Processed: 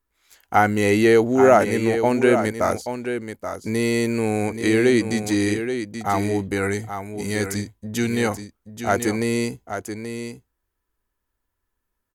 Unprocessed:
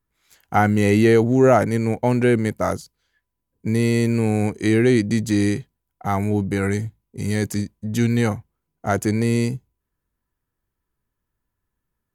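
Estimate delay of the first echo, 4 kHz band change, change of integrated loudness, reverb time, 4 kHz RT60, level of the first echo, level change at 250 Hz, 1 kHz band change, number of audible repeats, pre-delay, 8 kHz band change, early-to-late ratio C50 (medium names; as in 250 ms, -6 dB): 830 ms, +2.5 dB, -1.0 dB, no reverb, no reverb, -8.5 dB, -2.0 dB, +2.0 dB, 1, no reverb, +2.5 dB, no reverb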